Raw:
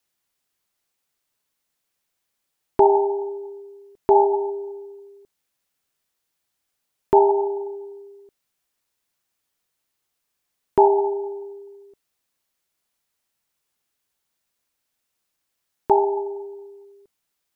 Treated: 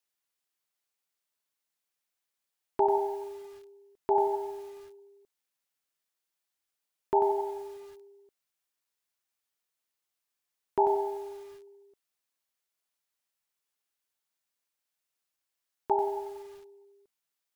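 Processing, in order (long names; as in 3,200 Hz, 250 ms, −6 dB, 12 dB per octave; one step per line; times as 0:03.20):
low-shelf EQ 360 Hz −8 dB
feedback echo at a low word length 92 ms, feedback 35%, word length 7 bits, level −8 dB
level −8 dB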